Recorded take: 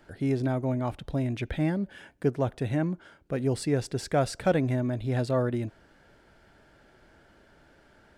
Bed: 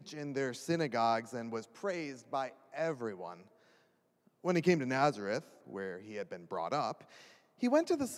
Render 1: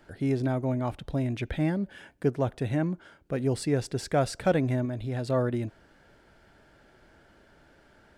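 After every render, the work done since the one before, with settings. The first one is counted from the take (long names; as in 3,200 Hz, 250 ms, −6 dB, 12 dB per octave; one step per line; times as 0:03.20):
0:04.85–0:05.26: downward compressor 2 to 1, threshold −31 dBFS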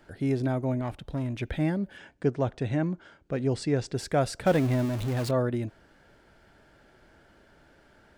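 0:00.81–0:01.41: tube saturation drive 24 dB, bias 0.4
0:01.97–0:03.94: low-pass filter 7,800 Hz 24 dB per octave
0:04.46–0:05.31: converter with a step at zero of −31.5 dBFS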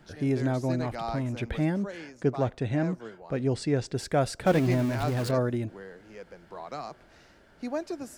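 mix in bed −3.5 dB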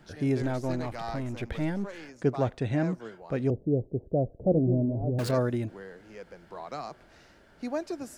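0:00.42–0:02.09: gain on one half-wave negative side −7 dB
0:03.50–0:05.19: Butterworth low-pass 620 Hz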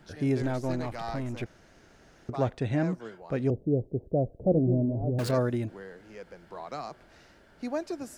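0:01.46–0:02.29: fill with room tone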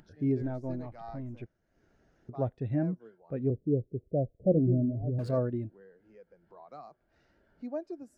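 upward compression, threshold −40 dBFS
every bin expanded away from the loudest bin 1.5 to 1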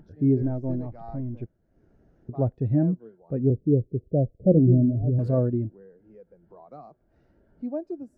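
tilt shelving filter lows +9 dB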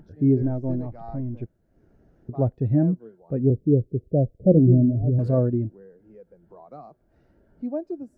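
level +2 dB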